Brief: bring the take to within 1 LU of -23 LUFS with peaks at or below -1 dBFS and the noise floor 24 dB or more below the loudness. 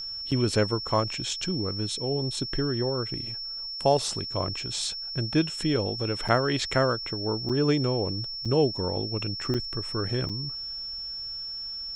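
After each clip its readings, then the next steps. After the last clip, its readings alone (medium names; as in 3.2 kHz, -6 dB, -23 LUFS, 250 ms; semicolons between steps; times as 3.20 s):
dropouts 6; longest dropout 6.3 ms; steady tone 5.4 kHz; tone level -33 dBFS; loudness -27.5 LUFS; peak level -7.0 dBFS; loudness target -23.0 LUFS
-> interpolate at 0.31/6.28/7.49/8.45/9.54/10.29 s, 6.3 ms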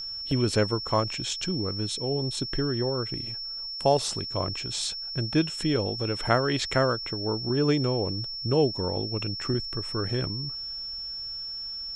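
dropouts 0; steady tone 5.4 kHz; tone level -33 dBFS
-> band-stop 5.4 kHz, Q 30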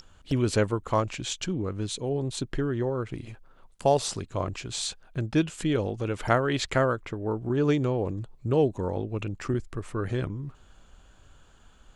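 steady tone not found; loudness -28.5 LUFS; peak level -7.5 dBFS; loudness target -23.0 LUFS
-> trim +5.5 dB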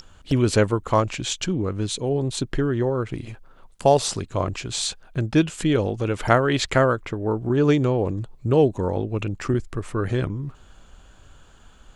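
loudness -23.0 LUFS; peak level -2.0 dBFS; noise floor -50 dBFS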